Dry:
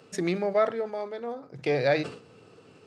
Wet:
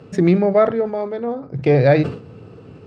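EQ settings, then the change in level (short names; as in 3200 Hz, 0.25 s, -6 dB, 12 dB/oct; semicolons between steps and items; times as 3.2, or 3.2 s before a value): RIAA curve playback; +7.5 dB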